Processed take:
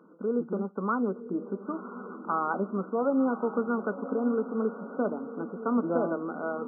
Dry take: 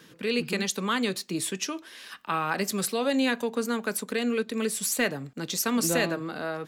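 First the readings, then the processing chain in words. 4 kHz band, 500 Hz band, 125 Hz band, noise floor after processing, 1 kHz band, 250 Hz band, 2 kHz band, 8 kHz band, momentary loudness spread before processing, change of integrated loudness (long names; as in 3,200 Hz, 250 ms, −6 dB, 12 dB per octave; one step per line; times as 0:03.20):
below −40 dB, +0.5 dB, −4.0 dB, −46 dBFS, +0.5 dB, 0.0 dB, −10.0 dB, below −40 dB, 7 LU, −2.5 dB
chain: linear-phase brick-wall band-pass 170–1,500 Hz
feedback delay with all-pass diffusion 1,015 ms, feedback 51%, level −12 dB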